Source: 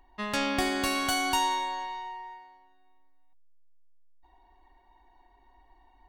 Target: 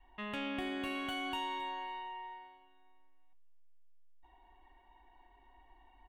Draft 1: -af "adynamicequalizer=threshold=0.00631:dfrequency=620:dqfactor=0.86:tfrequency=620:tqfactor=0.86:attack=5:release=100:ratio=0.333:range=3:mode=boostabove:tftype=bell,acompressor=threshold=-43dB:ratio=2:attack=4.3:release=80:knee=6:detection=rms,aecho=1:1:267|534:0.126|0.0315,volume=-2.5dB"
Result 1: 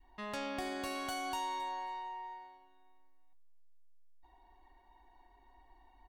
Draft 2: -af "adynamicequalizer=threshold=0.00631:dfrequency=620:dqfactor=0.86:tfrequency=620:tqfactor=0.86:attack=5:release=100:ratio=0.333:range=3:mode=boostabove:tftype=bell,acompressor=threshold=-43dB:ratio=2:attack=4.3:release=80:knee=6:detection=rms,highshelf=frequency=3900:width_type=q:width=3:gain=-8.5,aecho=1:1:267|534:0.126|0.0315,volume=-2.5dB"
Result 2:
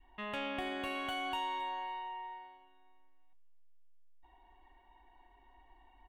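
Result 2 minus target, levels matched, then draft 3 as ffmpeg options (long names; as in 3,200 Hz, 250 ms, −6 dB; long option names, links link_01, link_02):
250 Hz band −4.0 dB
-af "adynamicequalizer=threshold=0.00631:dfrequency=280:dqfactor=0.86:tfrequency=280:tqfactor=0.86:attack=5:release=100:ratio=0.333:range=3:mode=boostabove:tftype=bell,acompressor=threshold=-43dB:ratio=2:attack=4.3:release=80:knee=6:detection=rms,highshelf=frequency=3900:width_type=q:width=3:gain=-8.5,aecho=1:1:267|534:0.126|0.0315,volume=-2.5dB"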